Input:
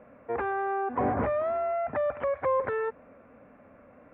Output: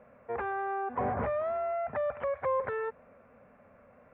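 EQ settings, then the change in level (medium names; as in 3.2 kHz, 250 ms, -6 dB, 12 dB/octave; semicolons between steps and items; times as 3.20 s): peaking EQ 300 Hz -14 dB 0.31 oct; -3.0 dB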